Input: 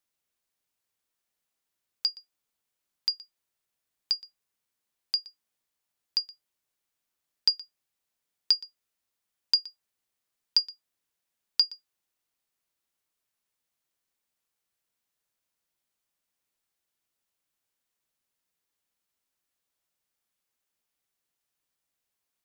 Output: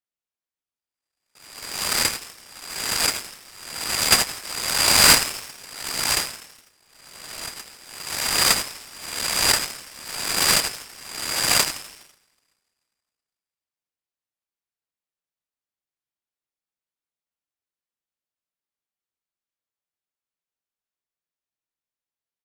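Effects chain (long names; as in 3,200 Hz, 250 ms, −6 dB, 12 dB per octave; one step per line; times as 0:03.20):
peak hold with a rise ahead of every peak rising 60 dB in 1.09 s
noise gate with hold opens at −53 dBFS
0:04.12–0:05.15: high shelf with overshoot 2,700 Hz +11.5 dB, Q 3
in parallel at +2 dB: downward compressor, threshold −31 dBFS, peak gain reduction 24.5 dB
on the sum: soft clipping −9.5 dBFS, distortion −10 dB
0:06.25–0:07.54: high-frequency loss of the air 380 metres
echo with shifted repeats 83 ms, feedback 59%, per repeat +140 Hz, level −14.5 dB
coupled-rooms reverb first 0.78 s, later 2.6 s, from −27 dB, DRR 11 dB
short delay modulated by noise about 3,000 Hz, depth 0.038 ms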